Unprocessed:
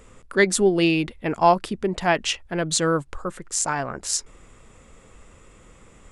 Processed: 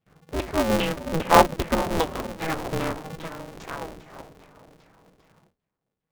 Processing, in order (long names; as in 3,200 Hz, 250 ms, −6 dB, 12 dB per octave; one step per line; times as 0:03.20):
source passing by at 0:01.64, 34 m/s, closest 19 metres
high-shelf EQ 8,300 Hz −5.5 dB
feedback delay with all-pass diffusion 504 ms, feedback 40%, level −12 dB
noise gate with hold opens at −50 dBFS
pitch vibrato 0.6 Hz 73 cents
in parallel at −3.5 dB: decimation without filtering 30×
on the sum: auto-filter low-pass saw down 2.5 Hz 220–3,500 Hz
healed spectral selection 0:01.91–0:02.19, 1,200–3,000 Hz
ring modulator with a square carrier 160 Hz
level −3.5 dB